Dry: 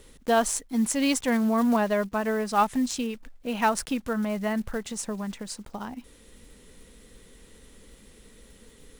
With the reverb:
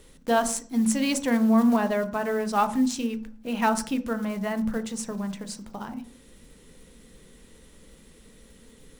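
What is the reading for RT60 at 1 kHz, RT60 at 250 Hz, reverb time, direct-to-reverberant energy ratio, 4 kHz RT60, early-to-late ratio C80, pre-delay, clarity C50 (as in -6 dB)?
0.40 s, 0.80 s, 0.45 s, 9.5 dB, 0.40 s, 19.0 dB, 12 ms, 14.5 dB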